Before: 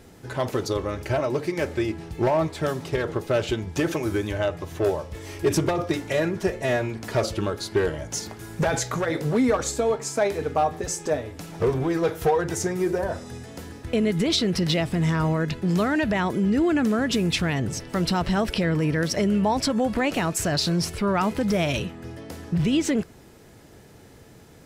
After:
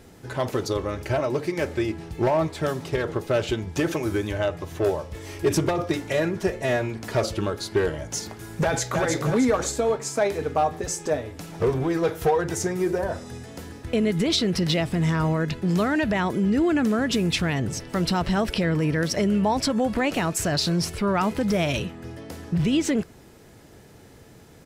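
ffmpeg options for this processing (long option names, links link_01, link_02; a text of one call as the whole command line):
ffmpeg -i in.wav -filter_complex "[0:a]asplit=2[link_01][link_02];[link_02]afade=type=in:start_time=8.63:duration=0.01,afade=type=out:start_time=9.03:duration=0.01,aecho=0:1:310|620|930|1240|1550|1860:0.668344|0.300755|0.13534|0.0609028|0.0274063|0.0123328[link_03];[link_01][link_03]amix=inputs=2:normalize=0" out.wav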